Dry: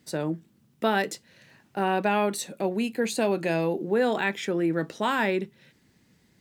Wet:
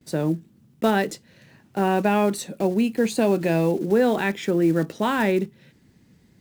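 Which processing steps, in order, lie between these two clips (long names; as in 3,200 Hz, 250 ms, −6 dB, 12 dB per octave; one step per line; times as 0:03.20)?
one scale factor per block 5 bits
low-shelf EQ 470 Hz +8.5 dB
noise gate with hold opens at −52 dBFS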